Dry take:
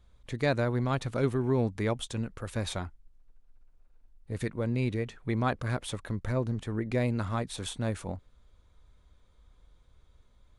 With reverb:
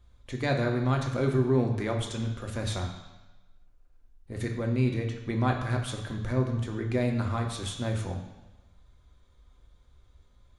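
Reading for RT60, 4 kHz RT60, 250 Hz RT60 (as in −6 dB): 1.1 s, 1.1 s, 1.1 s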